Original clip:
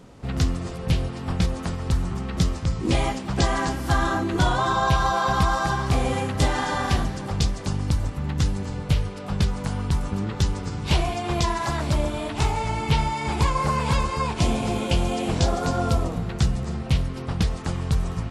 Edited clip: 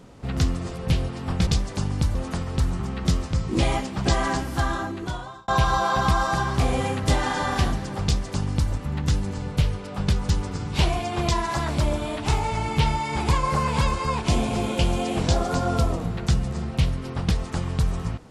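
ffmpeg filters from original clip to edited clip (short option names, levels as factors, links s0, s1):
-filter_complex "[0:a]asplit=5[s0][s1][s2][s3][s4];[s0]atrim=end=1.472[s5];[s1]atrim=start=7.358:end=8.042[s6];[s2]atrim=start=1.468:end=4.8,asetpts=PTS-STARTPTS,afade=t=out:st=2.182:d=1.15[s7];[s3]atrim=start=4.8:end=9.612,asetpts=PTS-STARTPTS,afade=t=in:d=0.004:c=hsin[s8];[s4]atrim=start=10.408[s9];[s5][s6]acrossfade=d=0.004:c1=hsin:c2=hsin[s10];[s7][s8]concat=n=2:v=0:a=1[s11];[s10][s11]acrossfade=d=0.004:c1=hsin:c2=hsin[s12];[s12][s9]acrossfade=d=0.004:c1=hsin:c2=hsin"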